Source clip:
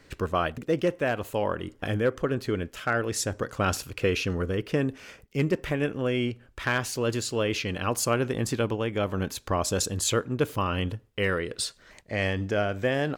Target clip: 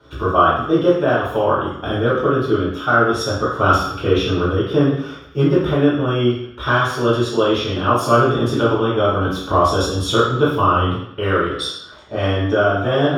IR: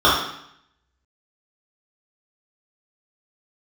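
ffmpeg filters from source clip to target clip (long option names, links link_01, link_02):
-filter_complex "[1:a]atrim=start_sample=2205[link_01];[0:a][link_01]afir=irnorm=-1:irlink=0,volume=-14dB"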